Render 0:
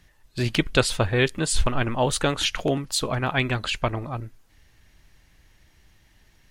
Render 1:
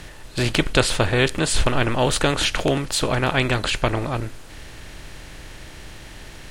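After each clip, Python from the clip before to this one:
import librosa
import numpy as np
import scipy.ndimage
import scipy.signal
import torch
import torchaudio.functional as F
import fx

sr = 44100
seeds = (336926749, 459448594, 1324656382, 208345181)

y = fx.bin_compress(x, sr, power=0.6)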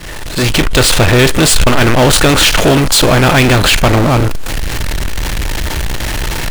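y = fx.fade_in_head(x, sr, length_s=1.1)
y = fx.noise_reduce_blind(y, sr, reduce_db=8)
y = fx.power_curve(y, sr, exponent=0.35)
y = y * librosa.db_to_amplitude(3.5)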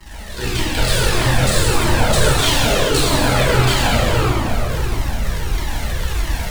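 y = fx.cycle_switch(x, sr, every=2, mode='muted')
y = fx.rev_plate(y, sr, seeds[0], rt60_s=3.6, hf_ratio=0.7, predelay_ms=0, drr_db=-9.0)
y = fx.comb_cascade(y, sr, direction='falling', hz=1.6)
y = y * librosa.db_to_amplitude(-9.0)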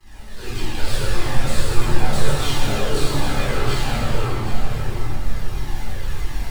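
y = x + 10.0 ** (-10.5 / 20.0) * np.pad(x, (int(780 * sr / 1000.0), 0))[:len(x)]
y = fx.room_shoebox(y, sr, seeds[1], volume_m3=310.0, walls='furnished', distance_m=3.9)
y = y * librosa.db_to_amplitude(-15.5)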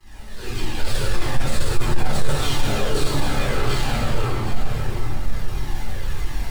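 y = 10.0 ** (-5.5 / 20.0) * np.tanh(x / 10.0 ** (-5.5 / 20.0))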